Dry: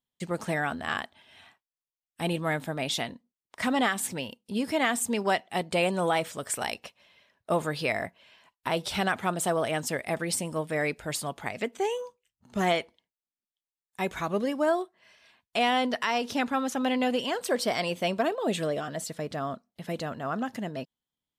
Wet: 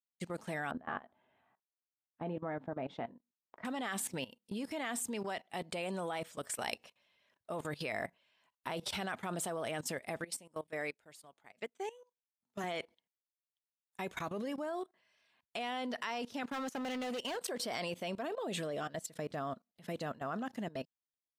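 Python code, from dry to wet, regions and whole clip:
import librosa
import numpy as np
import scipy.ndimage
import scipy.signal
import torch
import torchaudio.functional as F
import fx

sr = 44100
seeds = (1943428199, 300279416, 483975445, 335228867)

y = fx.chain(x, sr, fx.lowpass(hz=1100.0, slope=12),
    fx.low_shelf(hz=69.0, db=-10.5),
    fx.doubler(ms=16.0, db=-11.5), at=(0.71, 3.65))
y = fx.chain(y, sr, fx.highpass(hz=240.0, slope=6),
    fx.upward_expand(threshold_db=-40.0, expansion=2.5), at=(10.24, 12.64))
y = fx.chain(y, sr, fx.highpass(hz=280.0, slope=6),
    fx.peak_eq(hz=3600.0, db=-4.0, octaves=0.26),
    fx.clip_hard(threshold_db=-30.0), at=(16.43, 17.37))
y = fx.low_shelf(y, sr, hz=66.0, db=-9.0)
y = fx.level_steps(y, sr, step_db=18)
y = y * librosa.db_to_amplitude(-2.0)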